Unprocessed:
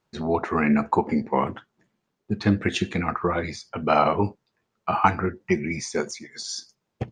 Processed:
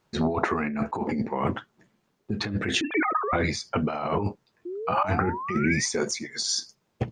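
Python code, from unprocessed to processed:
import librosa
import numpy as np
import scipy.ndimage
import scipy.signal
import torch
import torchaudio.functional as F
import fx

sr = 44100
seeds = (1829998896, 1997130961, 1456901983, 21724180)

y = fx.sine_speech(x, sr, at=(2.81, 3.33))
y = fx.over_compress(y, sr, threshold_db=-27.0, ratio=-1.0)
y = fx.spec_paint(y, sr, seeds[0], shape='rise', start_s=4.65, length_s=1.21, low_hz=340.0, high_hz=2000.0, level_db=-35.0)
y = F.gain(torch.from_numpy(y), 1.5).numpy()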